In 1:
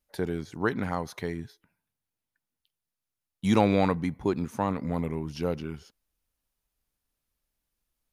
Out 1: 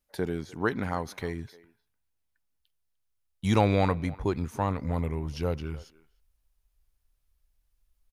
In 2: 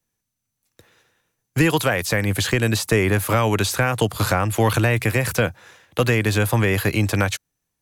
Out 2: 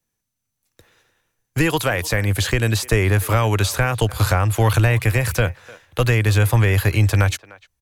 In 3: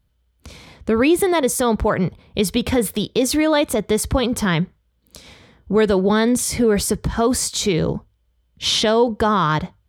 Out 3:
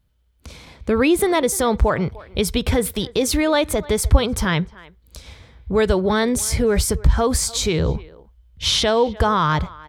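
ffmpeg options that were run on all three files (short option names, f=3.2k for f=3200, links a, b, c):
-filter_complex "[0:a]asubboost=boost=7:cutoff=77,asplit=2[a][b];[b]adelay=300,highpass=300,lowpass=3.4k,asoftclip=type=hard:threshold=-9.5dB,volume=-20dB[c];[a][c]amix=inputs=2:normalize=0"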